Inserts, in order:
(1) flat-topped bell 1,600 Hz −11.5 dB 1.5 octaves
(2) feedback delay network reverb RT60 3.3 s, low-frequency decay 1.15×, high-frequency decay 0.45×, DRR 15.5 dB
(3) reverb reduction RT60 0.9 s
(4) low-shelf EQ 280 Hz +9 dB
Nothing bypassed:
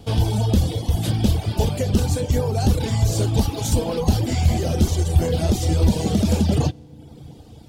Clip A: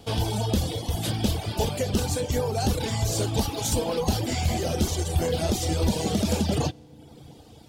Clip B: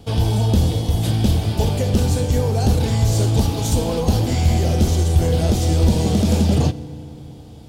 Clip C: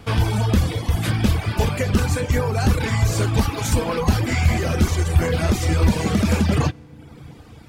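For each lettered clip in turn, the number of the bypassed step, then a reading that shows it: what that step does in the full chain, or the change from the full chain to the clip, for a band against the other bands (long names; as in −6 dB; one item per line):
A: 4, 125 Hz band −7.5 dB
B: 3, change in crest factor −2.0 dB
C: 1, 2 kHz band +10.5 dB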